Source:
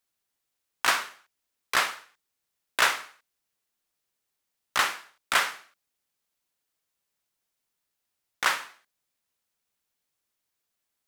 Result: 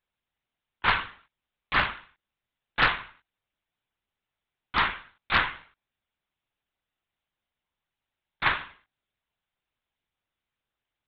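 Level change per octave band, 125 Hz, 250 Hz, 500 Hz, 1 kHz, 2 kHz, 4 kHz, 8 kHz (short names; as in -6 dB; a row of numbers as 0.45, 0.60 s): n/a, +7.5 dB, -1.0 dB, +1.0 dB, +1.0 dB, -1.5 dB, under -35 dB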